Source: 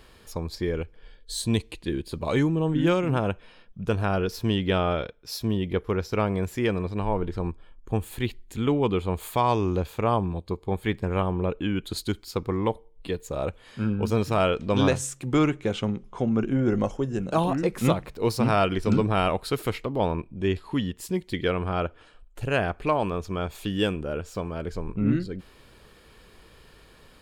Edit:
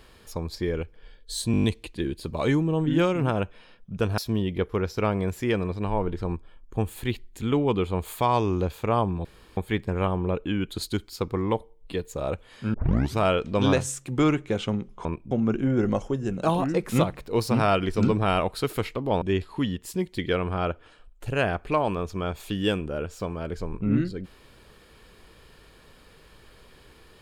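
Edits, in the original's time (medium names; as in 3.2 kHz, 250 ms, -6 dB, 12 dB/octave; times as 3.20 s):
1.52 s: stutter 0.02 s, 7 plays
4.06–5.33 s: delete
10.40–10.72 s: room tone
13.89 s: tape start 0.44 s
20.11–20.37 s: move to 16.20 s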